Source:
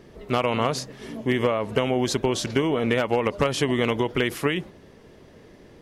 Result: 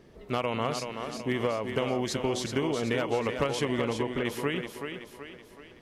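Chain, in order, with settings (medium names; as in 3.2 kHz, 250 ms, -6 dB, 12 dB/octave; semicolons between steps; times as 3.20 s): 3.81–4.25 s: low-pass 1.3 kHz 6 dB/octave; on a send: thinning echo 378 ms, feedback 48%, high-pass 200 Hz, level -6 dB; on the sum: trim -6.5 dB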